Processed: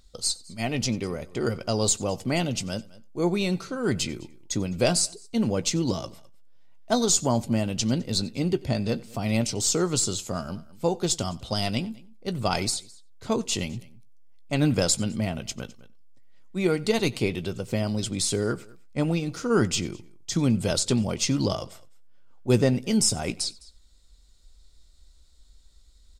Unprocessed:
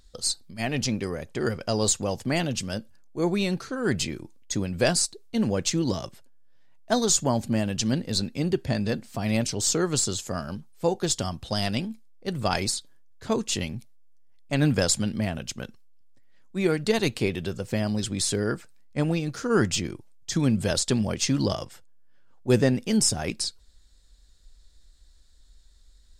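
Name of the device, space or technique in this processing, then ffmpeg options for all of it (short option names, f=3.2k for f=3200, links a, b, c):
ducked delay: -filter_complex "[0:a]bandreject=f=1.7k:w=5.7,asplit=2[a][b];[b]adelay=17,volume=-14dB[c];[a][c]amix=inputs=2:normalize=0,aecho=1:1:92:0.0708,asplit=3[d][e][f];[e]adelay=208,volume=-8dB[g];[f]apad=whole_len=1169263[h];[g][h]sidechaincompress=threshold=-42dB:ratio=12:attack=35:release=734[i];[d][i]amix=inputs=2:normalize=0"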